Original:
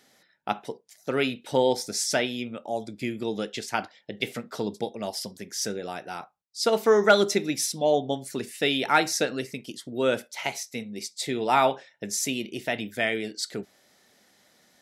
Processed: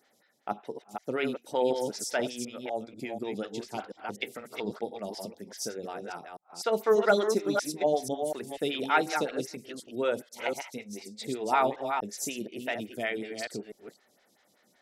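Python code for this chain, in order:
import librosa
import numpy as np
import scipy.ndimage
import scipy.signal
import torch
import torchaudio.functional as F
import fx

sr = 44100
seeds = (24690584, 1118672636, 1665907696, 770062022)

y = fx.reverse_delay(x, sr, ms=245, wet_db=-5.5)
y = fx.stagger_phaser(y, sr, hz=5.3)
y = y * 10.0 ** (-3.0 / 20.0)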